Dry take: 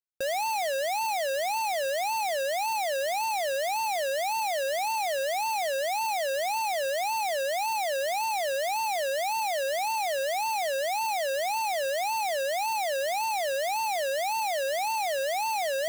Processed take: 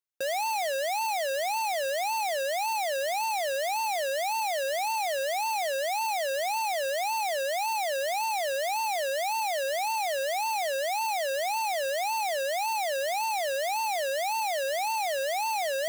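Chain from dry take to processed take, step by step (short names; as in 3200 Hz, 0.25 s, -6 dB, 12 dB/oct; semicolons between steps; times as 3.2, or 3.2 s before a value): HPF 270 Hz 6 dB/oct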